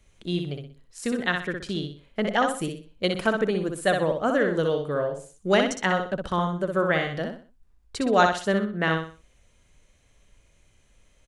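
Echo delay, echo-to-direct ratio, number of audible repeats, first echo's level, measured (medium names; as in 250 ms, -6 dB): 62 ms, -4.5 dB, 4, -5.0 dB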